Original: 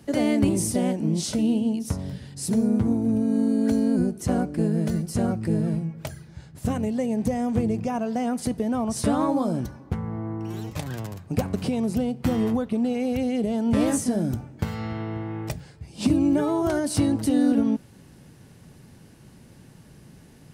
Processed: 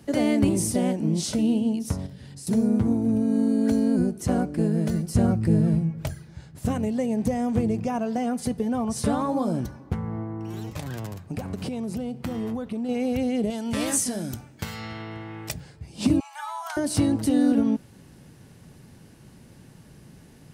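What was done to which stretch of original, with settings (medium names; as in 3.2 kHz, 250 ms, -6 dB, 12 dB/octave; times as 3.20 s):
2.06–2.47 s: compression, threshold -38 dBFS
5.14–6.13 s: bass shelf 130 Hz +11 dB
8.17–9.47 s: comb of notches 320 Hz
10.23–12.89 s: compression 3:1, threshold -28 dBFS
13.50–15.54 s: tilt shelf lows -7 dB, about 1.4 kHz
16.20–16.77 s: steep high-pass 740 Hz 96 dB/octave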